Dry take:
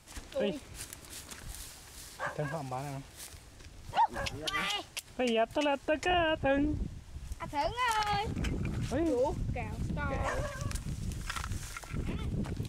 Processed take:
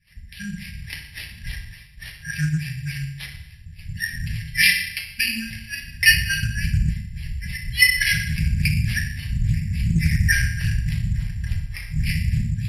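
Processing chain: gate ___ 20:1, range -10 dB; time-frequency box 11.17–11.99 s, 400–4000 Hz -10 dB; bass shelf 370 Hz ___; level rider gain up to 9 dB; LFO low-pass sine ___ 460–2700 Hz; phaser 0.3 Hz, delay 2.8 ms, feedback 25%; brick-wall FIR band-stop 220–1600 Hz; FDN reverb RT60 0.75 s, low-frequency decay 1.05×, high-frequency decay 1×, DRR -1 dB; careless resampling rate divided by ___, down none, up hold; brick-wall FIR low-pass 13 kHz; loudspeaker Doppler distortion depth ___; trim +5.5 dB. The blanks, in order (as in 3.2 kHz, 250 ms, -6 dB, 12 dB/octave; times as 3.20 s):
-48 dBFS, -5 dB, 3.5 Hz, 6×, 0.2 ms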